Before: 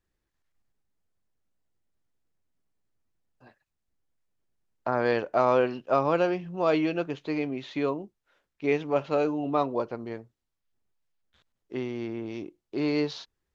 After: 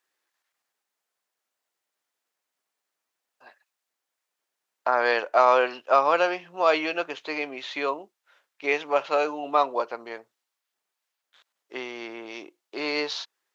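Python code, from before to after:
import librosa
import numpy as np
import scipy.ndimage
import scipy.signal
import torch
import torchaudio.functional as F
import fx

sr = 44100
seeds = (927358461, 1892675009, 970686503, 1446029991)

y = scipy.signal.sosfilt(scipy.signal.butter(2, 730.0, 'highpass', fs=sr, output='sos'), x)
y = y * 10.0 ** (8.0 / 20.0)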